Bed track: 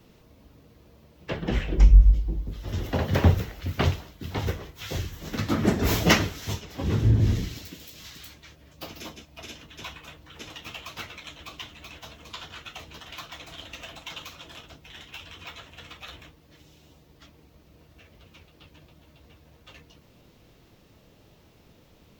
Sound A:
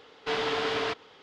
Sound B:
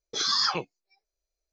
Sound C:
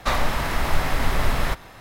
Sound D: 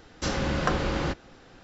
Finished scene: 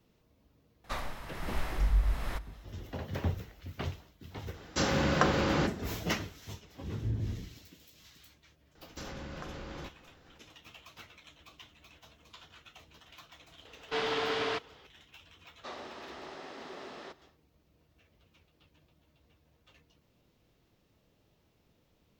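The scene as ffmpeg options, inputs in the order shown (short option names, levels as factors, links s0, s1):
-filter_complex "[3:a]asplit=2[s0][s1];[4:a]asplit=2[s2][s3];[0:a]volume=0.211[s4];[s0]tremolo=f=1.3:d=0.56[s5];[s2]highpass=85[s6];[s3]acompressor=threshold=0.0316:ratio=6:attack=3.2:release=140:knee=1:detection=peak[s7];[s1]highpass=f=230:w=0.5412,highpass=f=230:w=1.3066,equalizer=f=380:t=q:w=4:g=8,equalizer=f=1000:t=q:w=4:g=-4,equalizer=f=1500:t=q:w=4:g=-4,equalizer=f=2200:t=q:w=4:g=-6,lowpass=f=6100:w=0.5412,lowpass=f=6100:w=1.3066[s8];[s5]atrim=end=1.8,asetpts=PTS-STARTPTS,volume=0.211,afade=t=in:d=0.004:c=hsin,afade=t=out:st=1.796:d=0.004:c=hsin,adelay=840[s9];[s6]atrim=end=1.63,asetpts=PTS-STARTPTS,afade=t=in:d=0.004:c=hsin,afade=t=out:st=1.626:d=0.004:c=hsin,adelay=4540[s10];[s7]atrim=end=1.63,asetpts=PTS-STARTPTS,volume=0.355,afade=t=in:d=0.004:c=hsin,afade=t=out:st=1.626:d=0.004:c=hsin,adelay=8750[s11];[1:a]atrim=end=1.22,asetpts=PTS-STARTPTS,volume=0.708,afade=t=in:d=0.004:c=hsin,afade=t=out:st=1.216:d=0.004:c=hsin,adelay=13650[s12];[s8]atrim=end=1.8,asetpts=PTS-STARTPTS,volume=0.133,afade=t=in:d=0.1,afade=t=out:st=1.7:d=0.1,adelay=15580[s13];[s4][s9][s10][s11][s12][s13]amix=inputs=6:normalize=0"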